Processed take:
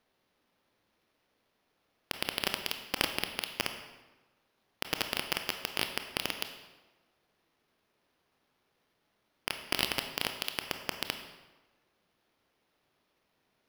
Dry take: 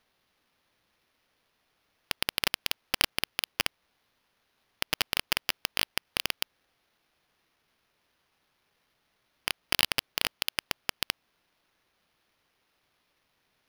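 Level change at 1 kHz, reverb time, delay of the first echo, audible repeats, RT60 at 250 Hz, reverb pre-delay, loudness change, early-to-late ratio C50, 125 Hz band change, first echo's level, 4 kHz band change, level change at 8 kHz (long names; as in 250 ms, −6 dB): −1.5 dB, 1.2 s, no echo audible, no echo audible, 1.2 s, 22 ms, −4.0 dB, 8.0 dB, −1.0 dB, no echo audible, −4.5 dB, −4.5 dB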